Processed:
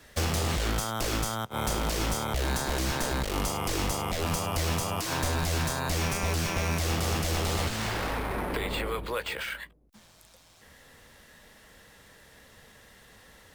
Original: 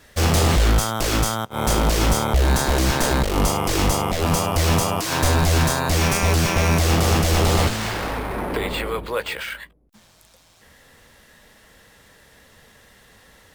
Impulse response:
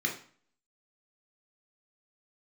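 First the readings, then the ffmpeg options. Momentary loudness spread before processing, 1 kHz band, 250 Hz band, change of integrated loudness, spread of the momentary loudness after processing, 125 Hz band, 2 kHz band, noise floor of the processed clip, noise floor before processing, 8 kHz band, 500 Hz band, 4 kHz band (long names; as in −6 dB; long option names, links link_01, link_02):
8 LU, −9.0 dB, −10.0 dB, −9.5 dB, 4 LU, −10.5 dB, −7.5 dB, −57 dBFS, −54 dBFS, −8.5 dB, −9.5 dB, −8.0 dB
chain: -filter_complex "[0:a]acrossover=split=100|1300[link_01][link_02][link_03];[link_01]acompressor=threshold=-30dB:ratio=4[link_04];[link_02]acompressor=threshold=-28dB:ratio=4[link_05];[link_03]acompressor=threshold=-29dB:ratio=4[link_06];[link_04][link_05][link_06]amix=inputs=3:normalize=0,volume=-3dB"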